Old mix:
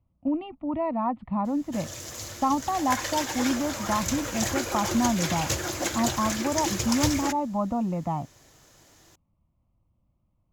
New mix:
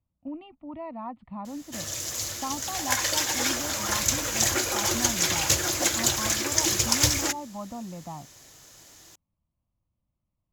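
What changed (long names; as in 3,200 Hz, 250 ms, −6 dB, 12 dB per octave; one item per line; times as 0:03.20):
speech −10.5 dB
master: add high-shelf EQ 2,400 Hz +8.5 dB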